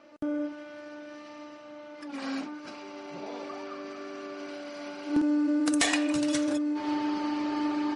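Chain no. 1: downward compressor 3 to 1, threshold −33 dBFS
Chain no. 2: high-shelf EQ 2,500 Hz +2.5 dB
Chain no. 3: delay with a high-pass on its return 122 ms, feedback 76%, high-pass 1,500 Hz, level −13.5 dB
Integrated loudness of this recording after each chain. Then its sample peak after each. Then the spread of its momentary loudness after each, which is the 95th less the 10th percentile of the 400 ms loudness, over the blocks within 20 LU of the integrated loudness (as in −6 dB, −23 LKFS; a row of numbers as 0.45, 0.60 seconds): −37.0, −30.0, −30.5 LKFS; −20.5, −10.5, −12.5 dBFS; 11, 18, 18 LU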